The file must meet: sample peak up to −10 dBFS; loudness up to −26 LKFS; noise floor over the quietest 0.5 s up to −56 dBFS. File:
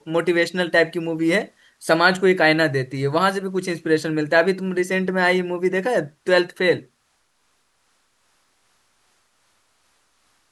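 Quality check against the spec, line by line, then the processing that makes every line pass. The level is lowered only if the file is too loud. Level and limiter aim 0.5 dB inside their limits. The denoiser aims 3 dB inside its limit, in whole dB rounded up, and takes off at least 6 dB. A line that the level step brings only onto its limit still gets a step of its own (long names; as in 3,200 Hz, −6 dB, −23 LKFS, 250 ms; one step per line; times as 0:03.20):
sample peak −2.5 dBFS: out of spec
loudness −20.0 LKFS: out of spec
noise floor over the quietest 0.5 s −66 dBFS: in spec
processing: level −6.5 dB
brickwall limiter −10.5 dBFS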